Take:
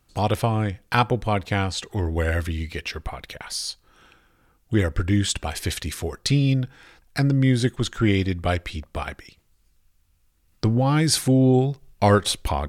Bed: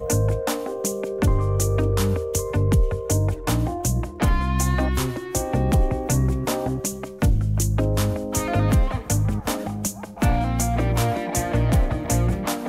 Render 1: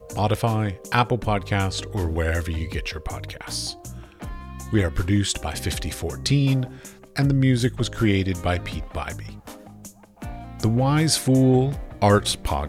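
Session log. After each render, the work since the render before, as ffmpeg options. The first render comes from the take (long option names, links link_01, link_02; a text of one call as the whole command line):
ffmpeg -i in.wav -i bed.wav -filter_complex "[1:a]volume=-15dB[link_01];[0:a][link_01]amix=inputs=2:normalize=0" out.wav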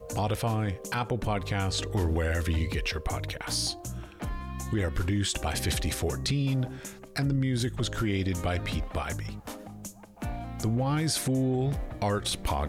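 ffmpeg -i in.wav -af "acompressor=threshold=-20dB:ratio=6,alimiter=limit=-19.5dB:level=0:latency=1:release=16" out.wav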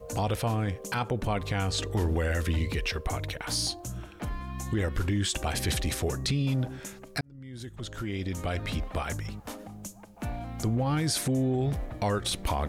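ffmpeg -i in.wav -filter_complex "[0:a]asplit=2[link_01][link_02];[link_01]atrim=end=7.21,asetpts=PTS-STARTPTS,afade=type=out:start_time=7.206:duration=0.004:curve=hsin[link_03];[link_02]atrim=start=7.21,asetpts=PTS-STARTPTS,afade=type=in:duration=1.65[link_04];[link_03][link_04]concat=n=2:v=0:a=1" out.wav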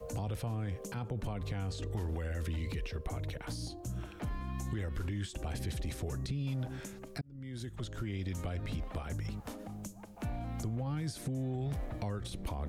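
ffmpeg -i in.wav -filter_complex "[0:a]alimiter=limit=-23dB:level=0:latency=1:release=29,acrossover=split=190|540[link_01][link_02][link_03];[link_01]acompressor=threshold=-35dB:ratio=4[link_04];[link_02]acompressor=threshold=-45dB:ratio=4[link_05];[link_03]acompressor=threshold=-48dB:ratio=4[link_06];[link_04][link_05][link_06]amix=inputs=3:normalize=0" out.wav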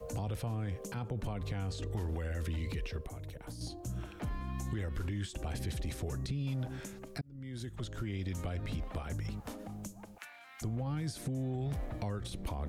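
ffmpeg -i in.wav -filter_complex "[0:a]asettb=1/sr,asplit=3[link_01][link_02][link_03];[link_01]atrim=end=3.054[link_04];[link_02]atrim=start=3.05:end=3.61,asetpts=PTS-STARTPTS,afade=type=in:duration=0.004:curve=qsin,afade=type=out:start_time=0.556:duration=0.004:curve=qsin,acrossover=split=880|6800[link_05][link_06][link_07];[link_05]acompressor=threshold=-42dB:ratio=4[link_08];[link_06]acompressor=threshold=-59dB:ratio=4[link_09];[link_07]acompressor=threshold=-55dB:ratio=4[link_10];[link_08][link_09][link_10]amix=inputs=3:normalize=0[link_11];[link_03]atrim=start=3.606[link_12];[link_04][link_11]acrossfade=duration=0.004:curve1=hsin:curve2=qsin[link_13];[link_13][link_12]acrossfade=duration=0.004:curve1=qsin:curve2=hsin,asplit=3[link_14][link_15][link_16];[link_14]afade=type=out:start_time=10.17:duration=0.02[link_17];[link_15]highpass=frequency=1700:width_type=q:width=1.8,afade=type=in:start_time=10.17:duration=0.02,afade=type=out:start_time=10.61:duration=0.02[link_18];[link_16]afade=type=in:start_time=10.61:duration=0.02[link_19];[link_17][link_18][link_19]amix=inputs=3:normalize=0" out.wav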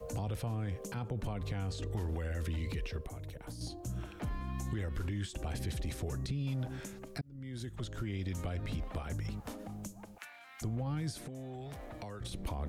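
ffmpeg -i in.wav -filter_complex "[0:a]asettb=1/sr,asplit=3[link_01][link_02][link_03];[link_01]atrim=end=11.194[link_04];[link_02]atrim=start=11.19:end=12.21,asetpts=PTS-STARTPTS,afade=type=in:duration=0.004:curve=qsin,afade=type=out:start_time=1.016:duration=0.004:curve=qsin,acrossover=split=220|460|3900[link_05][link_06][link_07][link_08];[link_05]acompressor=threshold=-51dB:ratio=3[link_09];[link_06]acompressor=threshold=-53dB:ratio=3[link_10];[link_07]acompressor=threshold=-46dB:ratio=3[link_11];[link_08]acompressor=threshold=-56dB:ratio=3[link_12];[link_09][link_10][link_11][link_12]amix=inputs=4:normalize=0[link_13];[link_03]atrim=start=12.206[link_14];[link_04][link_13]acrossfade=duration=0.004:curve1=hsin:curve2=qsin[link_15];[link_15][link_14]acrossfade=duration=0.004:curve1=qsin:curve2=hsin" out.wav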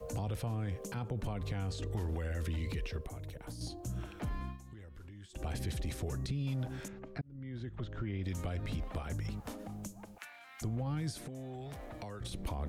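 ffmpeg -i in.wav -filter_complex "[0:a]asettb=1/sr,asplit=3[link_01][link_02][link_03];[link_01]atrim=end=6.884[link_04];[link_02]atrim=start=6.88:end=8.24,asetpts=PTS-STARTPTS,afade=type=in:duration=0.004:curve=qsin,afade=type=out:start_time=1.356:duration=0.004:curve=qsin,lowpass=2500[link_05];[link_03]atrim=start=8.236[link_06];[link_04][link_05]acrossfade=duration=0.004:curve1=hsin:curve2=qsin[link_07];[link_07][link_06]acrossfade=duration=0.004:curve1=qsin:curve2=hsin,asplit=3[link_08][link_09][link_10];[link_08]atrim=end=4.58,asetpts=PTS-STARTPTS,afade=type=out:start_time=4.45:duration=0.13:silence=0.188365[link_11];[link_09]atrim=start=4.58:end=5.29,asetpts=PTS-STARTPTS,volume=-14.5dB[link_12];[link_10]atrim=start=5.29,asetpts=PTS-STARTPTS,afade=type=in:duration=0.13:silence=0.188365[link_13];[link_11][link_12][link_13]concat=n=3:v=0:a=1" out.wav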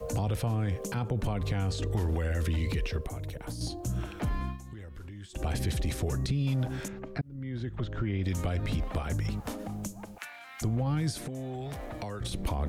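ffmpeg -i in.wav -af "volume=7dB" out.wav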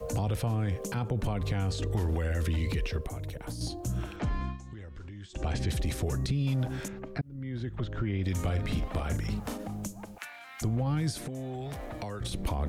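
ffmpeg -i in.wav -filter_complex "[0:a]asettb=1/sr,asplit=3[link_01][link_02][link_03];[link_01]atrim=end=4.164[link_04];[link_02]atrim=start=4.16:end=5.7,asetpts=PTS-STARTPTS,afade=type=in:duration=0.004:curve=qsin,afade=type=out:start_time=1.536:duration=0.004:curve=qsin,lowpass=frequency=7400:width=0.5412,lowpass=frequency=7400:width=1.3066[link_05];[link_03]atrim=start=5.696[link_06];[link_04][link_05]acrossfade=duration=0.004:curve1=hsin:curve2=qsin[link_07];[link_07][link_06]acrossfade=duration=0.004:curve1=qsin:curve2=hsin,asettb=1/sr,asplit=3[link_08][link_09][link_10];[link_08]atrim=end=8.314[link_11];[link_09]atrim=start=8.31:end=9.58,asetpts=PTS-STARTPTS,afade=type=in:duration=0.004:curve=qsin,afade=type=out:start_time=1.266:duration=0.004:curve=qsin,asplit=2[link_12][link_13];[link_13]adelay=43,volume=-8dB[link_14];[link_12][link_14]amix=inputs=2:normalize=0,atrim=end_sample=56007[link_15];[link_10]atrim=start=9.576[link_16];[link_11][link_15]acrossfade=duration=0.004:curve1=hsin:curve2=qsin[link_17];[link_17][link_16]acrossfade=duration=0.004:curve1=qsin:curve2=hsin" out.wav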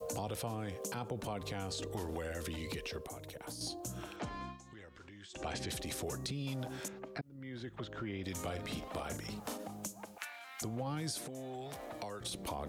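ffmpeg -i in.wav -af "highpass=frequency=570:poles=1,adynamicequalizer=threshold=0.00141:dfrequency=1900:dqfactor=0.92:tfrequency=1900:tqfactor=0.92:attack=5:release=100:ratio=0.375:range=3:mode=cutabove:tftype=bell" out.wav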